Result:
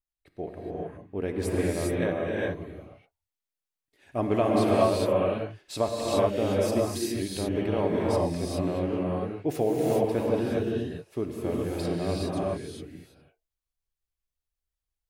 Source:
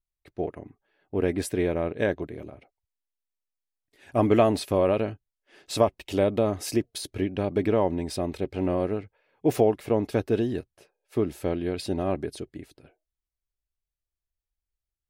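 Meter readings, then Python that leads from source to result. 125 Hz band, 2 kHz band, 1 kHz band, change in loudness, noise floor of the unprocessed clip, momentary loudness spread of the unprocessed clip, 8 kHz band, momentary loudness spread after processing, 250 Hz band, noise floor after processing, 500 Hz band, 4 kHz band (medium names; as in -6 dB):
0.0 dB, -0.5 dB, 0.0 dB, -1.0 dB, under -85 dBFS, 12 LU, 0.0 dB, 12 LU, -0.5 dB, under -85 dBFS, -0.5 dB, 0.0 dB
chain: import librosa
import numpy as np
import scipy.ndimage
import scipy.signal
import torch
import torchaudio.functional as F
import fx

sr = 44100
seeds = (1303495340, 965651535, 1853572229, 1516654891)

y = fx.rev_gated(x, sr, seeds[0], gate_ms=440, shape='rising', drr_db=-4.5)
y = y * librosa.db_to_amplitude(-6.0)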